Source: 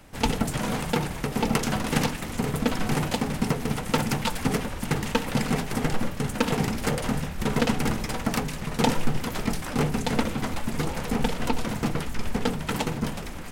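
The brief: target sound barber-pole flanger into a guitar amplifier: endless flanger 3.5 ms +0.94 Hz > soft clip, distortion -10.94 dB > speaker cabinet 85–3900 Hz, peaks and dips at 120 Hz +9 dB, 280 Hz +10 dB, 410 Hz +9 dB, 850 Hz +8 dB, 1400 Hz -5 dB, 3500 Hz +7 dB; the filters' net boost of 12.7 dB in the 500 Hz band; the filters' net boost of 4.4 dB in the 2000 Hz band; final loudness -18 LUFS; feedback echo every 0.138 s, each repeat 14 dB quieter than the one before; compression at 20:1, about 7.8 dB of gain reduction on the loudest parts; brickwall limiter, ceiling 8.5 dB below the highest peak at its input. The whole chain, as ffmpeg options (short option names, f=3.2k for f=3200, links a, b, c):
-filter_complex "[0:a]equalizer=f=500:t=o:g=7.5,equalizer=f=2k:t=o:g=5.5,acompressor=threshold=-22dB:ratio=20,alimiter=limit=-17dB:level=0:latency=1,aecho=1:1:138|276:0.2|0.0399,asplit=2[a][b];[b]adelay=3.5,afreqshift=0.94[c];[a][c]amix=inputs=2:normalize=1,asoftclip=threshold=-31dB,highpass=85,equalizer=f=120:t=q:w=4:g=9,equalizer=f=280:t=q:w=4:g=10,equalizer=f=410:t=q:w=4:g=9,equalizer=f=850:t=q:w=4:g=8,equalizer=f=1.4k:t=q:w=4:g=-5,equalizer=f=3.5k:t=q:w=4:g=7,lowpass=f=3.9k:w=0.5412,lowpass=f=3.9k:w=1.3066,volume=14.5dB"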